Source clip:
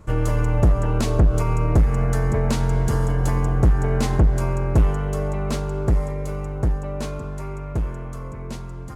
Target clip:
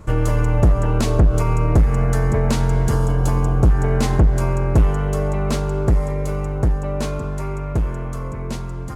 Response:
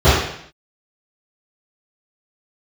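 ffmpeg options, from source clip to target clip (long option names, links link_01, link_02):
-filter_complex "[0:a]asplit=2[link_01][link_02];[link_02]acompressor=threshold=-24dB:ratio=6,volume=-1dB[link_03];[link_01][link_03]amix=inputs=2:normalize=0,asettb=1/sr,asplit=3[link_04][link_05][link_06];[link_04]atrim=end=2.954[link_07];[link_05]atrim=start=2.95:end=3.7,asetpts=PTS-STARTPTS,afade=type=in:duration=0.004:curve=qsin,afade=type=out:start_time=0.746:duration=0.004:curve=qsin,equalizer=frequency=1900:width_type=o:width=0.22:gain=-13[link_08];[link_06]atrim=start=3.696[link_09];[link_07][link_08]acrossfade=duration=0.004:curve1=hsin:curve2=qsin[link_10];[link_10][link_09]acrossfade=duration=0.004:curve1=qsin:curve2=hsin"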